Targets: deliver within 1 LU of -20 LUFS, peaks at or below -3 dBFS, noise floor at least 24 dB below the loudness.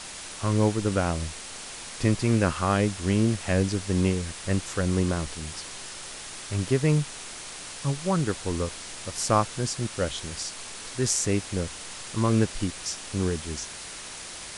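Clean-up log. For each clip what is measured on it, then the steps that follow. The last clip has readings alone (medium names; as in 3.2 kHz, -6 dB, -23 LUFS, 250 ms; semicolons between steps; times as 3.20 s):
noise floor -40 dBFS; noise floor target -52 dBFS; loudness -27.5 LUFS; peak level -9.0 dBFS; loudness target -20.0 LUFS
-> noise reduction 12 dB, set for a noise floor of -40 dBFS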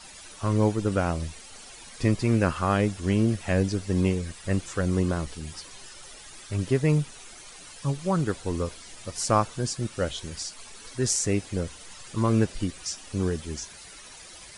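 noise floor -46 dBFS; noise floor target -51 dBFS
-> noise reduction 6 dB, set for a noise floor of -46 dBFS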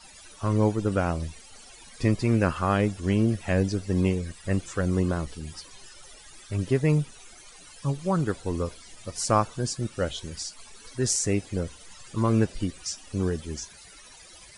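noise floor -49 dBFS; noise floor target -52 dBFS
-> noise reduction 6 dB, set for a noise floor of -49 dBFS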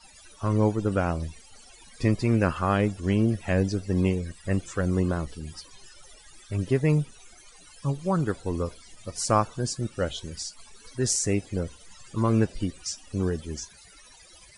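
noise floor -52 dBFS; loudness -27.5 LUFS; peak level -9.0 dBFS; loudness target -20.0 LUFS
-> trim +7.5 dB; peak limiter -3 dBFS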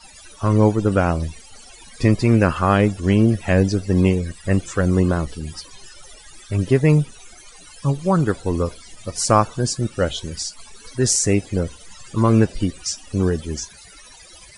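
loudness -20.0 LUFS; peak level -3.0 dBFS; noise floor -45 dBFS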